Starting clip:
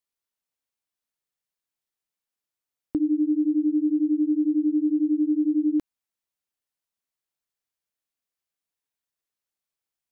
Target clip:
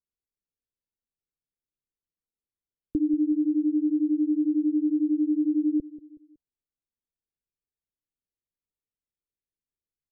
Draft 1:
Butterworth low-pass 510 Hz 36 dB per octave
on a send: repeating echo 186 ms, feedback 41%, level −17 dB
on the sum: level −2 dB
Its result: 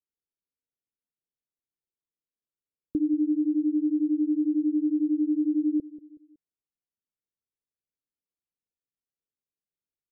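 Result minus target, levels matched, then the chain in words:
125 Hz band −3.0 dB
Butterworth low-pass 510 Hz 36 dB per octave
low-shelf EQ 78 Hz +12 dB
on a send: repeating echo 186 ms, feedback 41%, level −17 dB
on the sum: level −2 dB

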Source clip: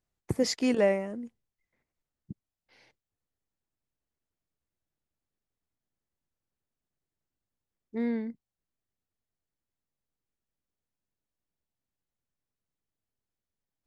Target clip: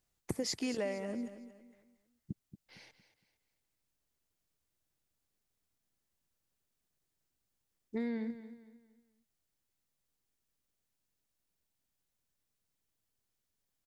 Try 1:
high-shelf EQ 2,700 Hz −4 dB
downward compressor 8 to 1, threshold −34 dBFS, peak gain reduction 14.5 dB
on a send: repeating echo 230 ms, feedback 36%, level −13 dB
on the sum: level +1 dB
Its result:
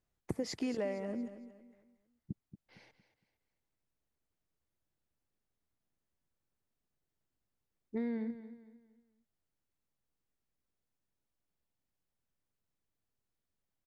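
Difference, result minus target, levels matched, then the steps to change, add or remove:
4,000 Hz band −5.5 dB
change: high-shelf EQ 2,700 Hz +7.5 dB

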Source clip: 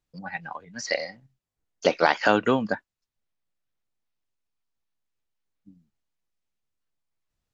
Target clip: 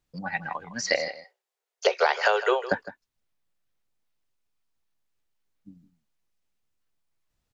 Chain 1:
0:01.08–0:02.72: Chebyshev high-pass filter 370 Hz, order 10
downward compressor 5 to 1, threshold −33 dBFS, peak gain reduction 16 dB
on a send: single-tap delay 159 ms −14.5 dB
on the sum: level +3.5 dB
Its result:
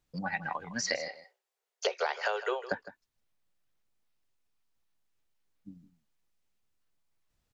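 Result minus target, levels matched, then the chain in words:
downward compressor: peak gain reduction +9.5 dB
0:01.08–0:02.72: Chebyshev high-pass filter 370 Hz, order 10
downward compressor 5 to 1, threshold −21 dBFS, peak gain reduction 6.5 dB
on a send: single-tap delay 159 ms −14.5 dB
on the sum: level +3.5 dB

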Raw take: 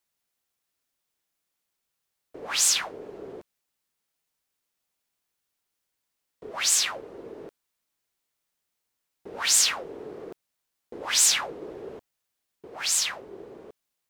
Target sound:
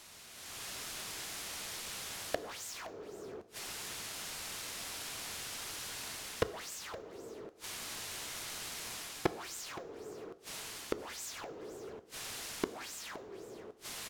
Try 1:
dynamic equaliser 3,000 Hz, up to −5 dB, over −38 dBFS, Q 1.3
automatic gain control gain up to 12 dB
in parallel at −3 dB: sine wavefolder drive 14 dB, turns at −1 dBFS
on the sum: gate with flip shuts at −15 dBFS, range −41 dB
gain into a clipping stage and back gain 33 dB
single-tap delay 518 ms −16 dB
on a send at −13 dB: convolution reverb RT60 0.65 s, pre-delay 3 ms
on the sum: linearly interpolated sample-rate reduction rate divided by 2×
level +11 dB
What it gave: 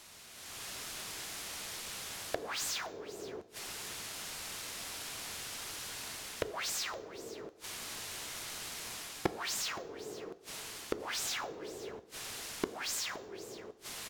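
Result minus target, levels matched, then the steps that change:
sine wavefolder: distortion −10 dB
change: sine wavefolder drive 14 dB, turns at −11.5 dBFS

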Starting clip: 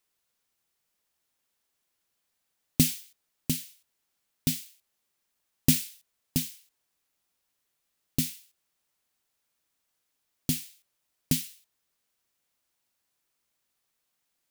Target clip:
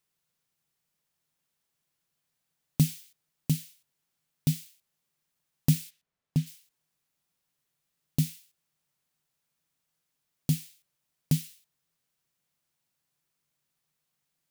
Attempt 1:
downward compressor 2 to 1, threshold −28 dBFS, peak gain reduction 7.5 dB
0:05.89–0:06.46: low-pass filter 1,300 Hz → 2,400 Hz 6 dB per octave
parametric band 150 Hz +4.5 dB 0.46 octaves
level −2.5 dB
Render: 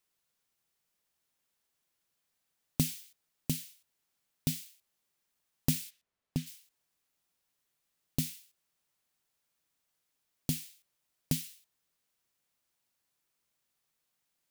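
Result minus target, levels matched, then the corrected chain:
125 Hz band −3.5 dB
downward compressor 2 to 1, threshold −28 dBFS, peak gain reduction 7.5 dB
0:05.89–0:06.46: low-pass filter 1,300 Hz → 2,400 Hz 6 dB per octave
parametric band 150 Hz +15.5 dB 0.46 octaves
level −2.5 dB

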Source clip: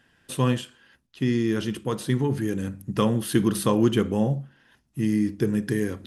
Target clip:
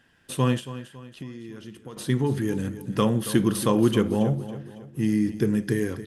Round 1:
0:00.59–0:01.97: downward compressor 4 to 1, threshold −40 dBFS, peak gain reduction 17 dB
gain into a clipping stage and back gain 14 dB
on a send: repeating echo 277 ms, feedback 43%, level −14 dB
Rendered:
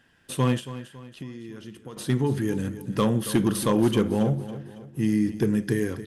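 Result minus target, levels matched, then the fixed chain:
gain into a clipping stage and back: distortion +36 dB
0:00.59–0:01.97: downward compressor 4 to 1, threshold −40 dBFS, peak gain reduction 17 dB
gain into a clipping stage and back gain 8 dB
on a send: repeating echo 277 ms, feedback 43%, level −14 dB

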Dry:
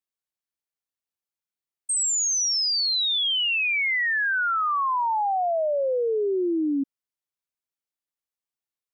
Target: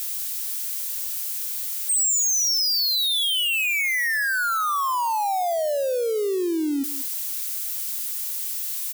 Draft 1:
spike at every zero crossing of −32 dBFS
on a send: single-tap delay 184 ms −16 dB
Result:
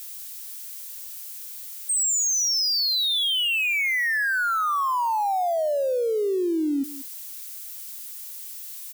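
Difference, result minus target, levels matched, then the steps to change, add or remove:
spike at every zero crossing: distortion −9 dB
change: spike at every zero crossing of −23 dBFS

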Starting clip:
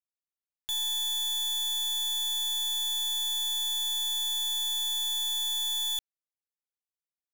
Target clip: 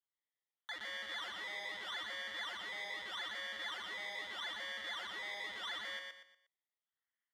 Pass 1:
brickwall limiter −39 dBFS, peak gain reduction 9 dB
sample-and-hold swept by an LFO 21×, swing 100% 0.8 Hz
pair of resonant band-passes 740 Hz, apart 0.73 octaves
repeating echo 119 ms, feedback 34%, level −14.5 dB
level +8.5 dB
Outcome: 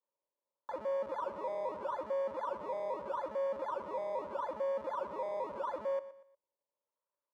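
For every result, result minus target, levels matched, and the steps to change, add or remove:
2,000 Hz band −17.0 dB; echo-to-direct −10.5 dB
change: pair of resonant band-passes 2,500 Hz, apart 0.73 octaves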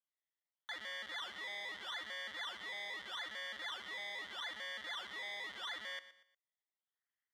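echo-to-direct −10.5 dB
change: repeating echo 119 ms, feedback 34%, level −4 dB

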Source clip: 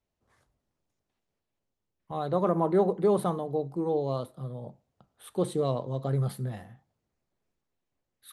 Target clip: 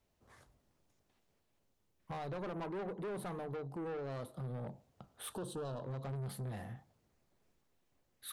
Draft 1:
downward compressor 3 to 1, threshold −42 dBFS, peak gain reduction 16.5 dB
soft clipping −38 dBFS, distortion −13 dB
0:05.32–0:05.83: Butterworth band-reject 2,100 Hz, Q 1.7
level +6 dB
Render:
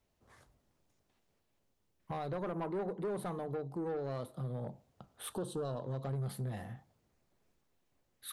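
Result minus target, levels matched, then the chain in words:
soft clipping: distortion −5 dB
downward compressor 3 to 1, threshold −42 dBFS, peak gain reduction 16.5 dB
soft clipping −44 dBFS, distortion −8 dB
0:05.32–0:05.83: Butterworth band-reject 2,100 Hz, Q 1.7
level +6 dB

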